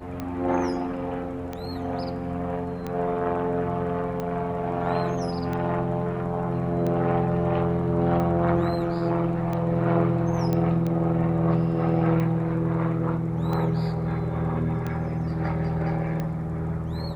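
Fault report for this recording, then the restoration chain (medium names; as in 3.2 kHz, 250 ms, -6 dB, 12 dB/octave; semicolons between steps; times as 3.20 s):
tick 45 rpm -18 dBFS
10.53 s: pop -14 dBFS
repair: de-click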